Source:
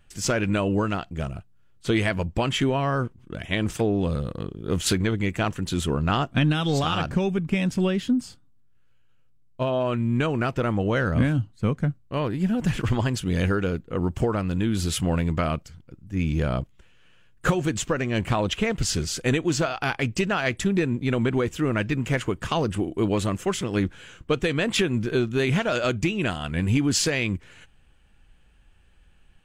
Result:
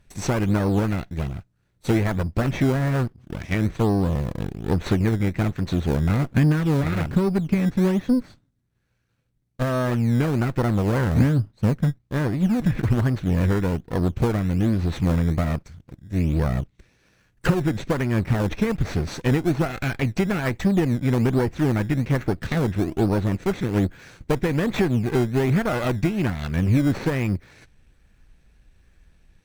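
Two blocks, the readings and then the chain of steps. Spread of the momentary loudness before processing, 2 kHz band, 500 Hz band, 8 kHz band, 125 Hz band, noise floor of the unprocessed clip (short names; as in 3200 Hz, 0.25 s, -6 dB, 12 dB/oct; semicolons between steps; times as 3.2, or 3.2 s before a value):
6 LU, -2.5 dB, 0.0 dB, -9.0 dB, +4.5 dB, -56 dBFS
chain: minimum comb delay 0.5 ms; treble ducked by the level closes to 1700 Hz, closed at -20 dBFS; in parallel at -7 dB: decimation with a swept rate 17×, swing 100% 1.2 Hz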